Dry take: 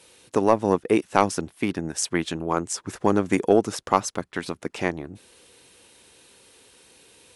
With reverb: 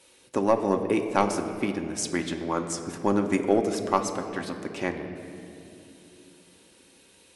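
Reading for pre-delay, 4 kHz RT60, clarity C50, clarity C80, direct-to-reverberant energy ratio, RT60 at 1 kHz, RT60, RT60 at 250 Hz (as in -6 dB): 3 ms, 1.6 s, 8.0 dB, 9.0 dB, 4.0 dB, 2.3 s, 2.9 s, 4.6 s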